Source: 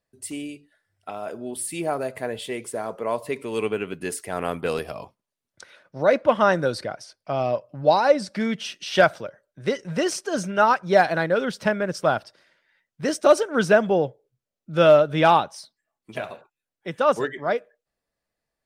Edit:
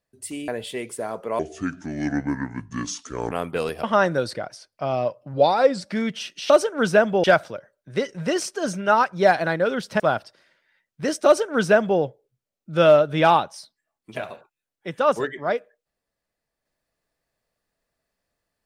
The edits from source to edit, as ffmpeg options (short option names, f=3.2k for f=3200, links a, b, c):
-filter_complex "[0:a]asplit=10[a][b][c][d][e][f][g][h][i][j];[a]atrim=end=0.482[k];[b]atrim=start=2.228:end=3.144[l];[c]atrim=start=3.14:end=4.41,asetpts=PTS-STARTPTS,asetrate=29106,aresample=44100,atrim=end_sample=84859,asetpts=PTS-STARTPTS[m];[d]atrim=start=4.406:end=4.932[n];[e]atrim=start=6.308:end=7.814[o];[f]atrim=start=7.81:end=8.25,asetpts=PTS-STARTPTS,asetrate=41013,aresample=44100[p];[g]atrim=start=8.246:end=8.942[q];[h]atrim=start=13.258:end=14.002[r];[i]atrim=start=8.938:end=11.702[s];[j]atrim=start=11.998[t];[k][l]acrossfade=d=0.004:c1=hsin:c2=hsin[u];[u][m]acrossfade=d=0.004:c1=hsin:c2=hsin[v];[v][n]acrossfade=d=0.004:c1=hsin:c2=hsin[w];[w][o]acrossfade=d=0.004:c1=hsin:c2=hsin[x];[x][p]acrossfade=d=0.004:c1=hsin:c2=hsin[y];[y][q]acrossfade=d=0.004:c1=hsin:c2=hsin[z];[z][r]acrossfade=d=0.004:c1=hsin:c2=hsin[aa];[aa][s]acrossfade=d=0.004:c1=hsin:c2=hsin[ab];[ab][t]acrossfade=d=0.004:c1=hsin:c2=hsin"